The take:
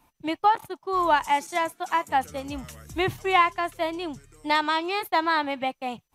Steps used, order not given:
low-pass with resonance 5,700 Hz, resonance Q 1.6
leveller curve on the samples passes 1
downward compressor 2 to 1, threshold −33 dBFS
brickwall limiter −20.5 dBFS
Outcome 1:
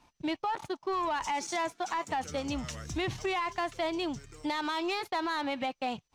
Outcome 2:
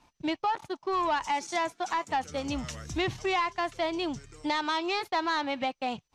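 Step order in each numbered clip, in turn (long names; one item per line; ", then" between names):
brickwall limiter, then low-pass with resonance, then leveller curve on the samples, then downward compressor
downward compressor, then brickwall limiter, then leveller curve on the samples, then low-pass with resonance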